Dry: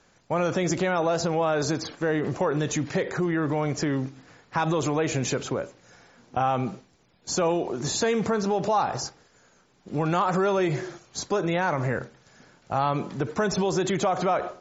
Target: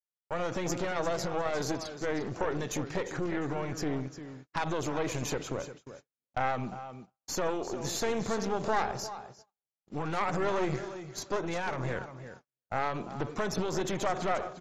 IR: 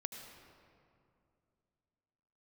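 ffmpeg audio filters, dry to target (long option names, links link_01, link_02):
-af "aecho=1:1:351|702|1053:0.266|0.0585|0.0129,aeval=exprs='0.282*(cos(1*acos(clip(val(0)/0.282,-1,1)))-cos(1*PI/2))+0.00631*(cos(3*acos(clip(val(0)/0.282,-1,1)))-cos(3*PI/2))+0.0891*(cos(4*acos(clip(val(0)/0.282,-1,1)))-cos(4*PI/2))+0.02*(cos(6*acos(clip(val(0)/0.282,-1,1)))-cos(6*PI/2))+0.002*(cos(8*acos(clip(val(0)/0.282,-1,1)))-cos(8*PI/2))':channel_layout=same,agate=range=-46dB:threshold=-41dB:ratio=16:detection=peak,volume=-6.5dB"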